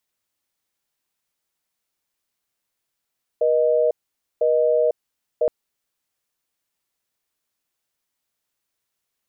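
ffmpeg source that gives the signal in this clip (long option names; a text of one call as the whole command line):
ffmpeg -f lavfi -i "aevalsrc='0.126*(sin(2*PI*480*t)+sin(2*PI*620*t))*clip(min(mod(t,1),0.5-mod(t,1))/0.005,0,1)':duration=2.07:sample_rate=44100" out.wav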